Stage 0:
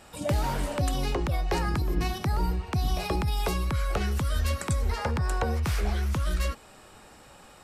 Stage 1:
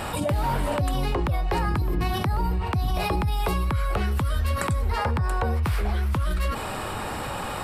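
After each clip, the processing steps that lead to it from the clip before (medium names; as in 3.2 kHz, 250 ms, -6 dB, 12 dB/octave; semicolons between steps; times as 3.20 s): fifteen-band graphic EQ 100 Hz +6 dB, 1 kHz +4 dB, 6.3 kHz -10 dB; level flattener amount 70%; trim -2.5 dB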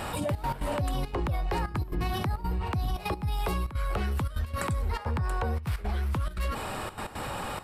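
in parallel at -6 dB: saturation -27 dBFS, distortion -10 dB; on the sum: trance gate "xxxx.x.xxxxx.xx" 172 bpm -12 dB; trim -6.5 dB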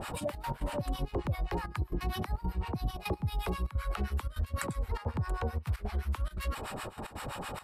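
harmonic tremolo 7.7 Hz, depth 100%, crossover 870 Hz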